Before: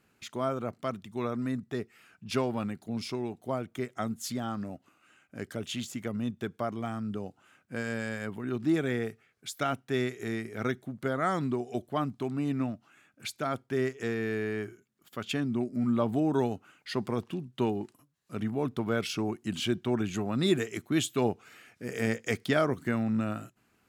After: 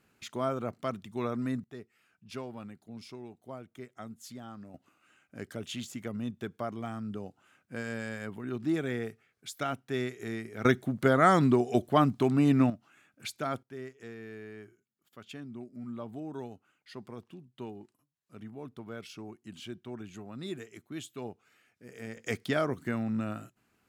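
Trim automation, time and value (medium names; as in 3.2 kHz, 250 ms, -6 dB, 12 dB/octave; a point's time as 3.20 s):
-0.5 dB
from 1.64 s -11 dB
from 4.74 s -3 dB
from 10.65 s +7 dB
from 12.70 s -1.5 dB
from 13.63 s -13 dB
from 22.17 s -3 dB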